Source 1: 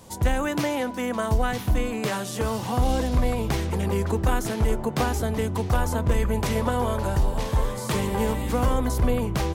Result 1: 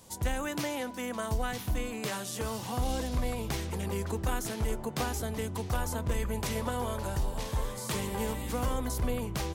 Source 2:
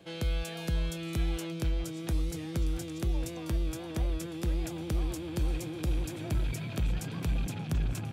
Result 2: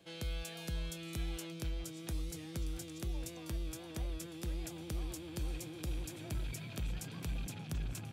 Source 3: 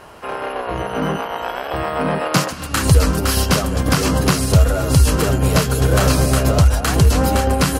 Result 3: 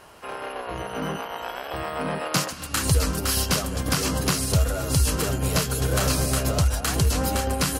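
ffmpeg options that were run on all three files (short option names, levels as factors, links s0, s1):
-af "highshelf=f=2700:g=7,volume=0.355"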